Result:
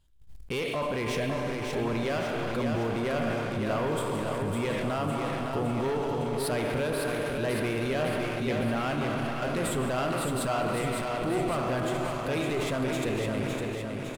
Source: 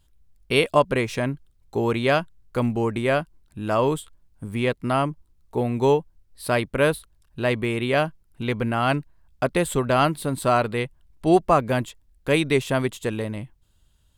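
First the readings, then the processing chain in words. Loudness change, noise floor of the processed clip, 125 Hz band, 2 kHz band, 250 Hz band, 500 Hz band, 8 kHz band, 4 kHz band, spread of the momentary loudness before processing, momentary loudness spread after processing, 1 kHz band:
−6.0 dB, −35 dBFS, −5.0 dB, −6.0 dB, −4.5 dB, −6.0 dB, −2.0 dB, −5.0 dB, 12 LU, 2 LU, −7.0 dB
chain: high-shelf EQ 9,400 Hz −5 dB
four-comb reverb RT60 1.6 s, combs from 27 ms, DRR 7.5 dB
leveller curve on the samples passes 1
downward compressor 3 to 1, threshold −20 dBFS, peak gain reduction 8.5 dB
leveller curve on the samples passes 2
brickwall limiter −25.5 dBFS, peak gain reduction 15.5 dB
repeating echo 559 ms, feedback 57%, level −4.5 dB
level that may fall only so fast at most 29 dB per second

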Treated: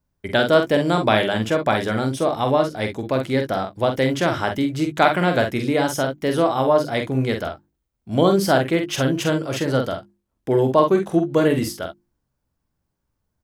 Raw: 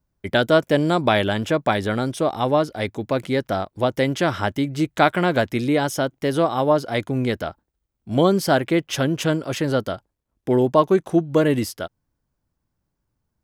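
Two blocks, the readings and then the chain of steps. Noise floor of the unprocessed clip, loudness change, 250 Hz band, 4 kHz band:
−78 dBFS, +1.0 dB, 0.0 dB, +1.0 dB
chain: mains-hum notches 50/100/150/200/250/300/350 Hz
ambience of single reflections 46 ms −6 dB, 61 ms −15 dB

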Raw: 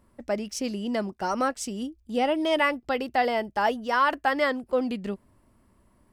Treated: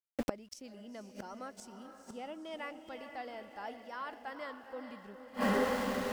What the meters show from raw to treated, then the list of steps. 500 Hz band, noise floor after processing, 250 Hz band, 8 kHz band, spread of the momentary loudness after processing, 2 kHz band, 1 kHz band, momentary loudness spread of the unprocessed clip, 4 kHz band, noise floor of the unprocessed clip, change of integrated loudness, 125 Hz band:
−11.5 dB, −58 dBFS, −10.0 dB, −12.0 dB, 17 LU, −13.5 dB, −14.5 dB, 9 LU, −13.0 dB, −64 dBFS, −13.0 dB, can't be measured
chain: feedback delay with all-pass diffusion 459 ms, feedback 50%, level −8 dB
centre clipping without the shift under −45.5 dBFS
gate with flip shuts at −25 dBFS, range −27 dB
level +7 dB

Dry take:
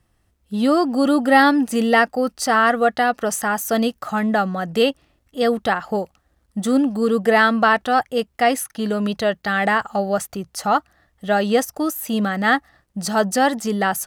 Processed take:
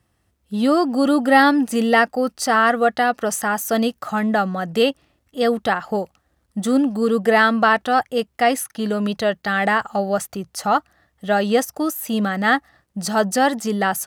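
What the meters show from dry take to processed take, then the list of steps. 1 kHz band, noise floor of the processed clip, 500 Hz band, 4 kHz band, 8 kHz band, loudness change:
0.0 dB, −68 dBFS, 0.0 dB, 0.0 dB, 0.0 dB, 0.0 dB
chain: high-pass filter 64 Hz

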